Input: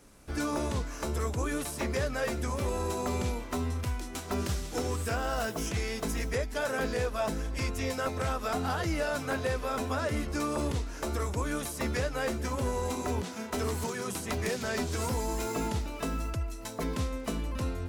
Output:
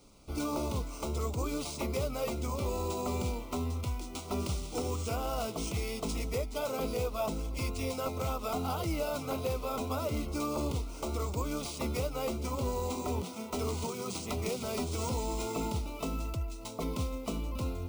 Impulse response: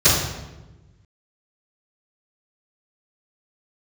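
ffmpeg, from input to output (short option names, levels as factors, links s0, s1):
-af "acrusher=samples=3:mix=1:aa=0.000001,asuperstop=centerf=1700:order=4:qfactor=2.1,volume=0.794"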